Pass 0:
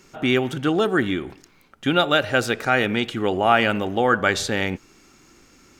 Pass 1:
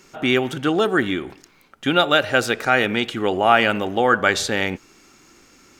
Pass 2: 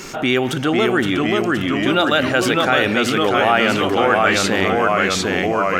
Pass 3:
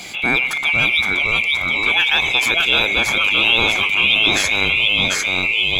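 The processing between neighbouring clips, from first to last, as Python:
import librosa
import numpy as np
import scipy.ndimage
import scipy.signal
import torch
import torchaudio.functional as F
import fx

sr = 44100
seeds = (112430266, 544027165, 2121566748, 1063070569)

y1 = fx.low_shelf(x, sr, hz=210.0, db=-6.0)
y1 = y1 * 10.0 ** (2.5 / 20.0)
y2 = fx.echo_pitch(y1, sr, ms=486, semitones=-1, count=3, db_per_echo=-3.0)
y2 = fx.env_flatten(y2, sr, amount_pct=50)
y2 = y2 * 10.0 ** (-2.0 / 20.0)
y3 = fx.band_swap(y2, sr, width_hz=2000)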